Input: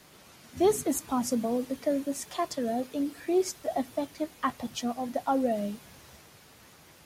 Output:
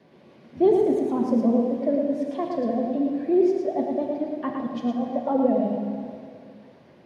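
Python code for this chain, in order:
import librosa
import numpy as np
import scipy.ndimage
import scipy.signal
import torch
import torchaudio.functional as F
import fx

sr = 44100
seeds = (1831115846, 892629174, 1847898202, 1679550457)

y = scipy.signal.sosfilt(scipy.signal.butter(2, 100.0, 'highpass', fs=sr, output='sos'), x)
y = fx.peak_eq(y, sr, hz=7400.0, db=-10.0, octaves=0.61)
y = fx.notch(y, sr, hz=1300.0, q=6.2)
y = fx.small_body(y, sr, hz=(210.0, 350.0, 520.0), ring_ms=20, db=7)
y = fx.vibrato(y, sr, rate_hz=13.0, depth_cents=57.0)
y = fx.spacing_loss(y, sr, db_at_10k=22)
y = y + 10.0 ** (-4.5 / 20.0) * np.pad(y, (int(111 * sr / 1000.0), 0))[:len(y)]
y = fx.rev_plate(y, sr, seeds[0], rt60_s=2.3, hf_ratio=0.8, predelay_ms=0, drr_db=3.5)
y = y * 10.0 ** (-2.0 / 20.0)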